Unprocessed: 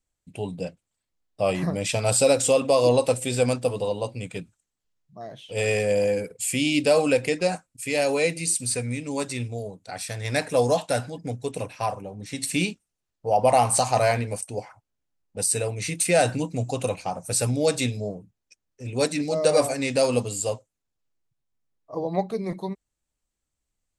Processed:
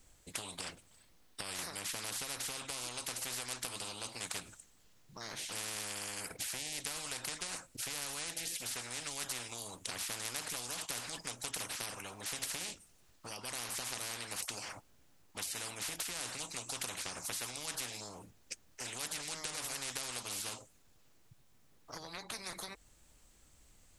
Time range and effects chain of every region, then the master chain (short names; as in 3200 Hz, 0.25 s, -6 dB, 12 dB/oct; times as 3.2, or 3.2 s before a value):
0.59–1.59 notch 7200 Hz + compressor 3:1, threshold -30 dBFS
whole clip: compressor 12:1, threshold -31 dBFS; spectral compressor 10:1; gain -1 dB